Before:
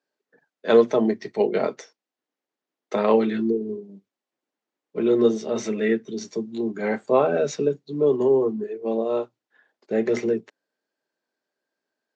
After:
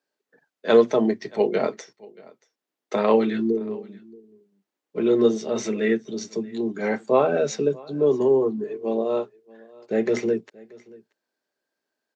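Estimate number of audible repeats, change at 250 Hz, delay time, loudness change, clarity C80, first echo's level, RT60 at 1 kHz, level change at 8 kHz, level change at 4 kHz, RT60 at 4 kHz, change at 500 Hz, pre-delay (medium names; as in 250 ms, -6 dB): 1, 0.0 dB, 630 ms, 0.0 dB, no reverb, -23.5 dB, no reverb, no reading, +1.5 dB, no reverb, 0.0 dB, no reverb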